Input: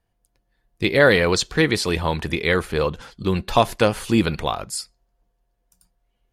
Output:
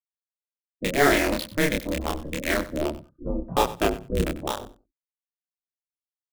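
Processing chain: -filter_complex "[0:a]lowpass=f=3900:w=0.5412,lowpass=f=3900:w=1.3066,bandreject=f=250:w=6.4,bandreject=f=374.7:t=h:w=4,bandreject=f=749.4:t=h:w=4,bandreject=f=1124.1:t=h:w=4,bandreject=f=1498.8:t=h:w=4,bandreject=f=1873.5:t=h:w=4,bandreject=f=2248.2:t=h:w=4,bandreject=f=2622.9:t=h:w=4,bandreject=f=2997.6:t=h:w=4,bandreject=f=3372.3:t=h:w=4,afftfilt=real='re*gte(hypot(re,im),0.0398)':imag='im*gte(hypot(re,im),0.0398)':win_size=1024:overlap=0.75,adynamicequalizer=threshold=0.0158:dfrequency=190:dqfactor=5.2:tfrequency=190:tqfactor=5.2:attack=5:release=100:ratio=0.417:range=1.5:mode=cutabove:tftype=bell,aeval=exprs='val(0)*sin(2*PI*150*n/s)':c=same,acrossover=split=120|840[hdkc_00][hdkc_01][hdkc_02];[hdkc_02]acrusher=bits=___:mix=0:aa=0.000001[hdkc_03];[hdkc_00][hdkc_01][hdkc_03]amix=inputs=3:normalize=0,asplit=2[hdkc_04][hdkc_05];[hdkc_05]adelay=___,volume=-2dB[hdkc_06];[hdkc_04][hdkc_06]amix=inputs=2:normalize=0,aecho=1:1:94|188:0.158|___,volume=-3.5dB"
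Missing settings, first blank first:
3, 28, 0.0254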